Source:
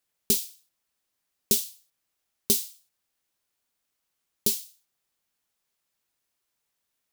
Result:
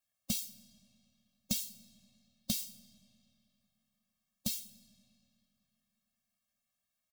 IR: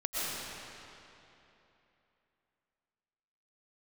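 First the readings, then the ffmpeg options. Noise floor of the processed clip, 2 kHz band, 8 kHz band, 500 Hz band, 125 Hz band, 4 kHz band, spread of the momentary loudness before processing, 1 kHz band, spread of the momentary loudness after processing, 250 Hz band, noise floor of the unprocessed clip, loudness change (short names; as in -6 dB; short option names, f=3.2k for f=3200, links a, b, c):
under -85 dBFS, -5.5 dB, -10.5 dB, -21.5 dB, -3.0 dB, -7.5 dB, 16 LU, n/a, 12 LU, -4.5 dB, -81 dBFS, -12.0 dB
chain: -filter_complex "[0:a]acrossover=split=5800[a][b];[b]acompressor=threshold=-26dB:ratio=4:attack=1:release=60[c];[a][c]amix=inputs=2:normalize=0,asplit=2[d][e];[e]adelay=16,volume=-10.5dB[f];[d][f]amix=inputs=2:normalize=0,asplit=2[g][h];[1:a]atrim=start_sample=2205[i];[h][i]afir=irnorm=-1:irlink=0,volume=-26dB[j];[g][j]amix=inputs=2:normalize=0,afftfilt=real='re*eq(mod(floor(b*sr/1024/260),2),0)':imag='im*eq(mod(floor(b*sr/1024/260),2),0)':win_size=1024:overlap=0.75,volume=-3.5dB"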